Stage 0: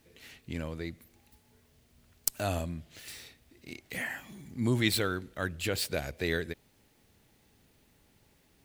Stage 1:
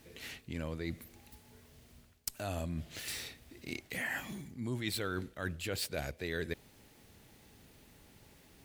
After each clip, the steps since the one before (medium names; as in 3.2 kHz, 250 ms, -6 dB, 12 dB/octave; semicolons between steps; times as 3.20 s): reverse; compression 6:1, threshold -40 dBFS, peak gain reduction 17.5 dB; reverse; one-sided clip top -24 dBFS; trim +5.5 dB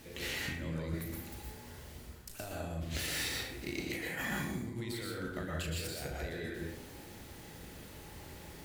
compressor with a negative ratio -44 dBFS, ratio -1; on a send: flutter echo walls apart 6.3 m, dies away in 0.24 s; on the sum: plate-style reverb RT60 0.74 s, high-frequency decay 0.5×, pre-delay 105 ms, DRR -2.5 dB; trim +1 dB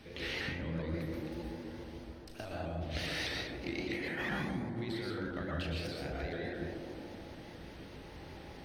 Savitzky-Golay filter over 15 samples; feedback echo behind a band-pass 142 ms, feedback 77%, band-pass 430 Hz, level -4 dB; vibrato with a chosen wave saw up 4.9 Hz, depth 100 cents